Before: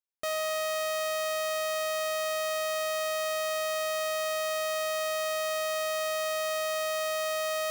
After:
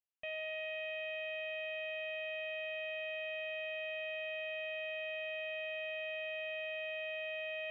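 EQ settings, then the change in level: ladder low-pass 3000 Hz, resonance 75%; air absorption 100 m; fixed phaser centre 1300 Hz, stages 6; +1.5 dB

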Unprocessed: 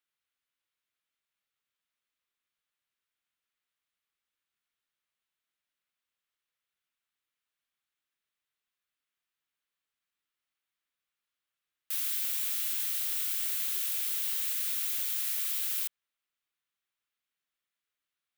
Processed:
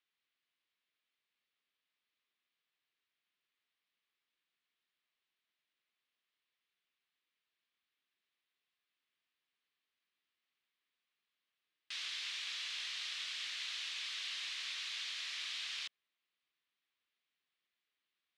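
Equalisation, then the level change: speaker cabinet 170–4700 Hz, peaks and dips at 570 Hz -5 dB, 850 Hz -5 dB, 1400 Hz -6 dB; low shelf 410 Hz -3 dB; +3.5 dB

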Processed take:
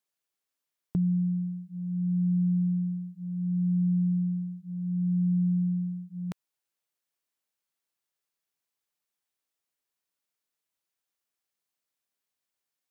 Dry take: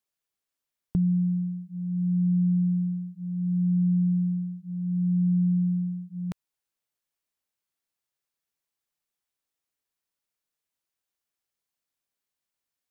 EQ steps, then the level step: low shelf 95 Hz -10.5 dB; 0.0 dB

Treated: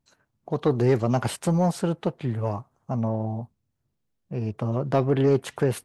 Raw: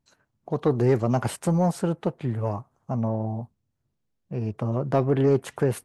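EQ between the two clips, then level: dynamic EQ 3700 Hz, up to +5 dB, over -52 dBFS, Q 1; 0.0 dB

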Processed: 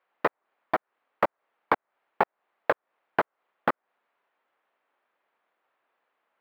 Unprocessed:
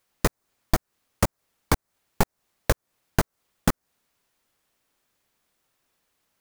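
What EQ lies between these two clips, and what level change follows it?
HPF 630 Hz 12 dB/oct; air absorption 410 m; bell 6200 Hz -13.5 dB 1.9 oct; +8.0 dB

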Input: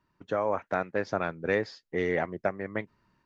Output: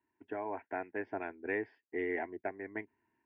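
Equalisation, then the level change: air absorption 220 m; speaker cabinet 140–3700 Hz, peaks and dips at 200 Hz -4 dB, 800 Hz -3 dB, 1300 Hz -4 dB; fixed phaser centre 810 Hz, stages 8; -3.0 dB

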